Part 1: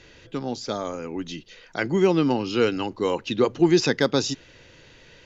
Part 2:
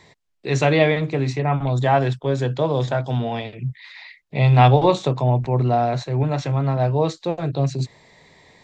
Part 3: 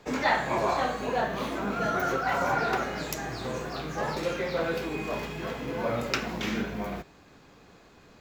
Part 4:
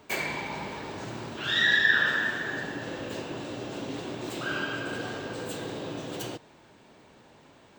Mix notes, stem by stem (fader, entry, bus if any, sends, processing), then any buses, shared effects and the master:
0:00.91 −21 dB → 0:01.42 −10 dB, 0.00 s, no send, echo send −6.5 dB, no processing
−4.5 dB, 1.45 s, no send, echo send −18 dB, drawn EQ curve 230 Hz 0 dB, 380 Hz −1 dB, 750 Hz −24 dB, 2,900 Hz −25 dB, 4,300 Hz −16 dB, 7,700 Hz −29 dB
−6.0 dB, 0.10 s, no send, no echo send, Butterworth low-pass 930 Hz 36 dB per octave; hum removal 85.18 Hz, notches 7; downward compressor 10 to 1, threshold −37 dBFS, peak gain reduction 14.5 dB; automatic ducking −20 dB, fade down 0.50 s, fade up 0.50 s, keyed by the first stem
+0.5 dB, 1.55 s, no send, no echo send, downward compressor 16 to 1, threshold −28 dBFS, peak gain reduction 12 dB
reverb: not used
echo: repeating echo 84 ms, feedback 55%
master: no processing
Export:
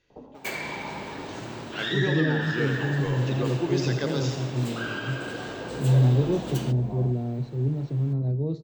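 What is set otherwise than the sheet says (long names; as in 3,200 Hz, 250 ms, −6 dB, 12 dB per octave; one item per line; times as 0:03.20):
stem 3 −6.0 dB → +3.5 dB
stem 4: entry 1.55 s → 0.35 s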